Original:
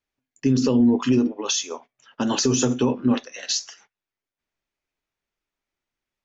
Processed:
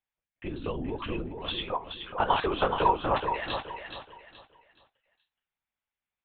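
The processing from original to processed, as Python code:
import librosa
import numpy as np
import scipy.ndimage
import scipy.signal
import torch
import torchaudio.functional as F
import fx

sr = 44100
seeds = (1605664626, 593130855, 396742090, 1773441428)

y = scipy.signal.sosfilt(scipy.signal.butter(2, 510.0, 'highpass', fs=sr, output='sos'), x)
y = fx.lpc_vocoder(y, sr, seeds[0], excitation='whisper', order=10)
y = fx.peak_eq(y, sr, hz=940.0, db=14.5, octaves=2.2, at=(1.58, 3.66))
y = fx.echo_feedback(y, sr, ms=424, feedback_pct=30, wet_db=-7.0)
y = F.gain(torch.from_numpy(y), -5.5).numpy()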